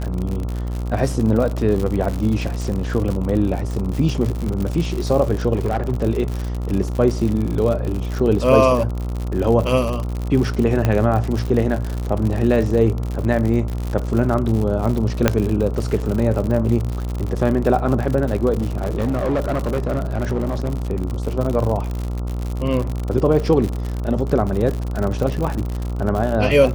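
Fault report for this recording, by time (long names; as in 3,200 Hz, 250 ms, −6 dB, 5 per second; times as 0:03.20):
mains buzz 60 Hz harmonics 23 −24 dBFS
surface crackle 86 per second −23 dBFS
0:05.54–0:05.94: clipping −15 dBFS
0:10.85: click −6 dBFS
0:15.28: click 0 dBFS
0:18.60–0:20.78: clipping −16 dBFS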